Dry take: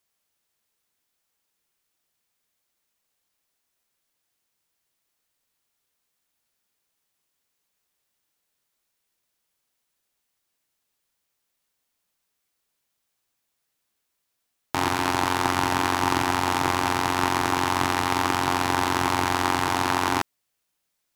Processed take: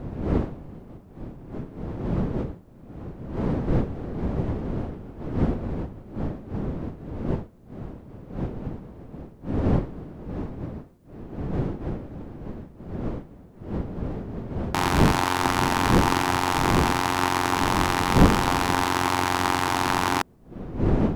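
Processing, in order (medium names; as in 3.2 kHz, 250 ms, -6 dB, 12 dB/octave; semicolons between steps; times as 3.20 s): wind noise 270 Hz -28 dBFS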